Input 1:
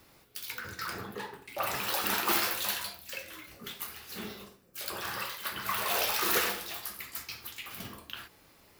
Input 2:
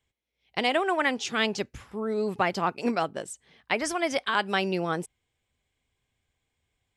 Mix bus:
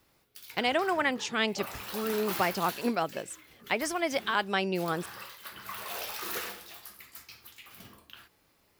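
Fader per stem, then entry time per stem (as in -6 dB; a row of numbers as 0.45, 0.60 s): -8.0, -2.5 dB; 0.00, 0.00 s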